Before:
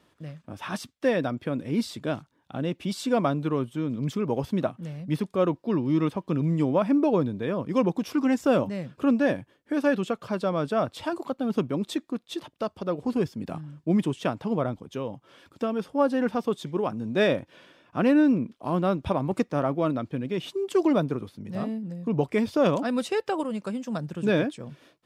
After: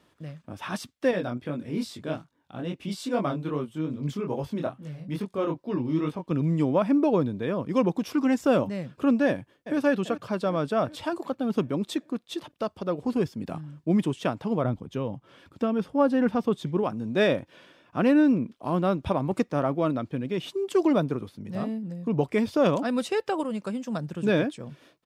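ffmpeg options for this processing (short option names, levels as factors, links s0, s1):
-filter_complex "[0:a]asettb=1/sr,asplit=3[s0][s1][s2];[s0]atrim=end=1.114[s3];[s1]atrim=start=1.11:end=6.31,asetpts=PTS-STARTPTS,afade=t=in:d=0.004:c=qsin,afade=t=out:st=5.196:d=0.004:c=qsin,flanger=delay=20:depth=5.6:speed=2.4[s4];[s2]atrim=start=6.306[s5];[s3][s4]acrossfade=d=0.004:c1=hsin:c2=qsin[s6];[s6][s5]acrossfade=d=0.004:c1=qsin:c2=hsin,asplit=2[s7][s8];[s8]afade=t=in:st=9.27:d=0.01,afade=t=out:st=9.78:d=0.01,aecho=0:1:390|780|1170|1560|1950|2340|2730:0.237137|0.142282|0.0853695|0.0512217|0.030733|0.0184398|0.0110639[s9];[s7][s9]amix=inputs=2:normalize=0,asettb=1/sr,asplit=3[s10][s11][s12];[s10]atrim=end=14.644[s13];[s11]atrim=start=14.64:end=16.83,asetpts=PTS-STARTPTS,afade=t=in:d=0.004:c=qsin,afade=t=out:st=2.186:d=0.004:c=qsin,bass=f=250:g=6,treble=f=4000:g=-4[s14];[s12]atrim=start=16.826[s15];[s13][s14]acrossfade=d=0.004:c1=hsin:c2=qsin[s16];[s16][s15]acrossfade=d=0.004:c1=qsin:c2=hsin"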